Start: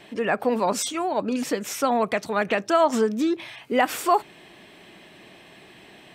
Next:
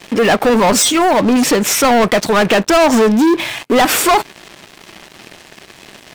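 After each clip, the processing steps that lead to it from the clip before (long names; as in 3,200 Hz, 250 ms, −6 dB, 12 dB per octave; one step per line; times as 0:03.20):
leveller curve on the samples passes 5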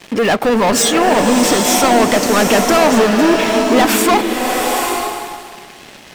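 slow-attack reverb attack 870 ms, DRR 1.5 dB
level −2 dB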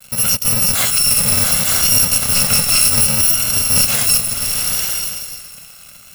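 samples in bit-reversed order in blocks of 128 samples
pitch vibrato 0.66 Hz 28 cents
level −1.5 dB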